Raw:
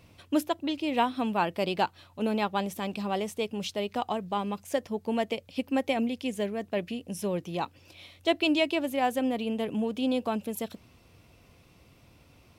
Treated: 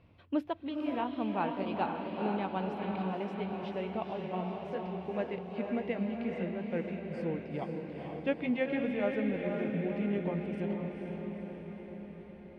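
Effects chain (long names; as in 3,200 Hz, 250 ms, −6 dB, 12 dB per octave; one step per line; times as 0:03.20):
pitch glide at a constant tempo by −5 semitones starting unshifted
high-frequency loss of the air 370 metres
feedback delay with all-pass diffusion 477 ms, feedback 63%, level −3.5 dB
level −4.5 dB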